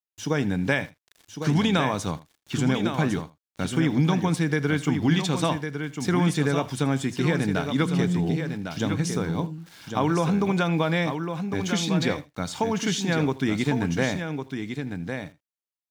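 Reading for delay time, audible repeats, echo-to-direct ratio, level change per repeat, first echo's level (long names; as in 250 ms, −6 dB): 81 ms, 3, −6.5 dB, repeats not evenly spaced, −19.5 dB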